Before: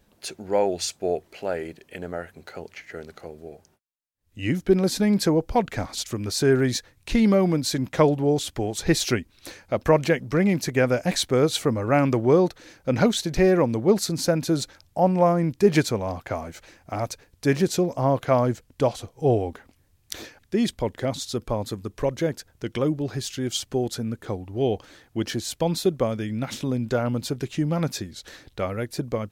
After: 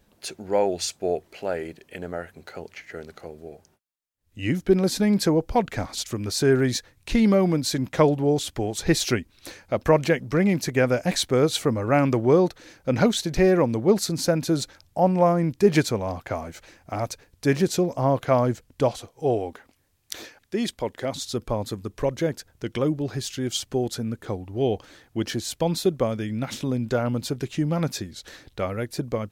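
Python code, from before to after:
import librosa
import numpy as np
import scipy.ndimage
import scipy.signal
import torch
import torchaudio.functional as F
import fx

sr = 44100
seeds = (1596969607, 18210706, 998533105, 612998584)

y = fx.low_shelf(x, sr, hz=210.0, db=-9.5, at=(18.99, 21.14))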